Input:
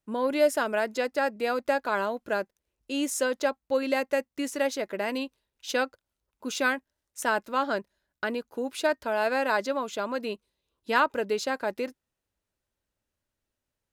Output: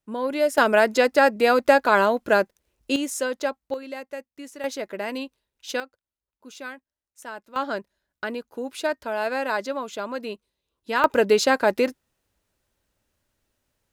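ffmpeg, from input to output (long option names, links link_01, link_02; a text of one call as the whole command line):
ffmpeg -i in.wav -af "asetnsamples=nb_out_samples=441:pad=0,asendcmd='0.58 volume volume 9.5dB;2.96 volume volume 0.5dB;3.74 volume volume -8.5dB;4.64 volume volume 0dB;5.8 volume volume -11dB;7.56 volume volume 0dB;11.04 volume volume 10dB',volume=0.5dB" out.wav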